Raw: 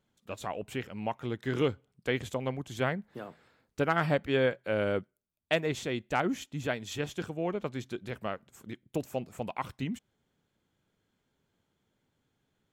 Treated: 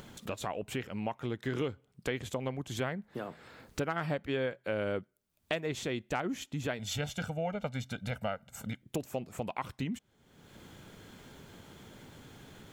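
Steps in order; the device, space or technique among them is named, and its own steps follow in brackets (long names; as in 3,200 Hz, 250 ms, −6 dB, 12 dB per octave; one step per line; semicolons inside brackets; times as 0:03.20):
0:06.79–0:08.82: comb filter 1.4 ms, depth 95%
upward and downward compression (upward compression, threshold −31 dBFS; downward compressor 4 to 1, threshold −30 dBFS, peak gain reduction 8 dB)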